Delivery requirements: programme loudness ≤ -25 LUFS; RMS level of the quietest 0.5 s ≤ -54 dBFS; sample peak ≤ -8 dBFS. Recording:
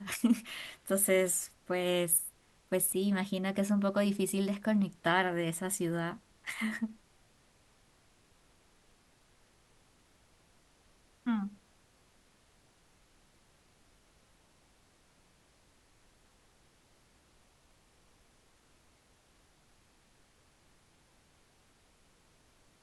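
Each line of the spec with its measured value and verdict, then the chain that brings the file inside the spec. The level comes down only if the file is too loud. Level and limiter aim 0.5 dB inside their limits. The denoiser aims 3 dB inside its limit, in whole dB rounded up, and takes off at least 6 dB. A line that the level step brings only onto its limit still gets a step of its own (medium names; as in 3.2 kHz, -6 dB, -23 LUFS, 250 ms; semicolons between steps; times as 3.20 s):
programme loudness -32.0 LUFS: pass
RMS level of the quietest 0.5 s -66 dBFS: pass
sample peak -13.0 dBFS: pass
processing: none needed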